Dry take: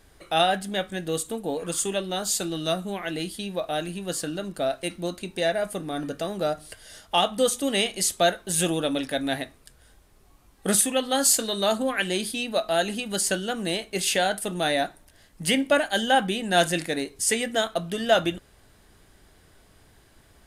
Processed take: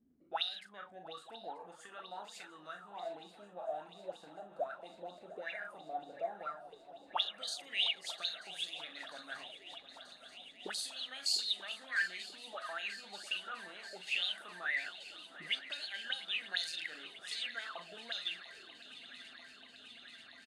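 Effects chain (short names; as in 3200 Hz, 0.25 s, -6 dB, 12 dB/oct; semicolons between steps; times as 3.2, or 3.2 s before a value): bell 950 Hz -5 dB 2.8 oct; transient shaper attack -2 dB, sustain +7 dB; doubler 39 ms -6.5 dB; auto-wah 230–4300 Hz, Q 13, up, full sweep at -20 dBFS; on a send: swung echo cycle 0.936 s, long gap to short 3:1, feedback 78%, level -17 dB; on the sum: gain +3.5 dB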